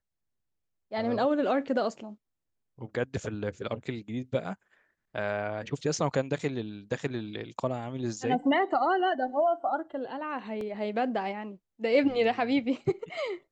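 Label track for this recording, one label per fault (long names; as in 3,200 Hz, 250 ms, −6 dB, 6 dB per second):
10.610000	10.610000	drop-out 2.1 ms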